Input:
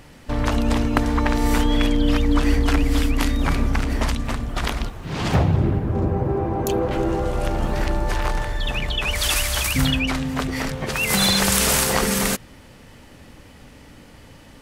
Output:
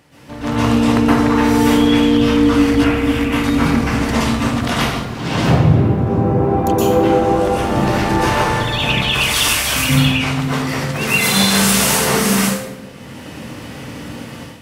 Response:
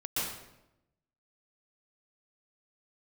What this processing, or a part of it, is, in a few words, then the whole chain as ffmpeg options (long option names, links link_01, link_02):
far laptop microphone: -filter_complex "[1:a]atrim=start_sample=2205[link_01];[0:a][link_01]afir=irnorm=-1:irlink=0,highpass=110,dynaudnorm=framelen=370:gausssize=3:maxgain=10dB,asettb=1/sr,asplit=3[link_02][link_03][link_04];[link_02]atrim=end=2.844[link_05];[link_03]atrim=start=2.84:end=3.44,asetpts=PTS-STARTPTS,afade=type=in:duration=0.004:curve=qsin,afade=type=out:start_time=0.596:duration=0.004:curve=qsin,highshelf=frequency=3400:width_type=q:width=1.5:gain=-6.5[link_06];[link_04]atrim=start=3.436[link_07];[link_05][link_06]acrossfade=duration=0.004:curve1=hsin:curve2=qsin[link_08];[link_08][link_07]acrossfade=duration=0.004:curve1=qsin:curve2=hsin,volume=-1dB"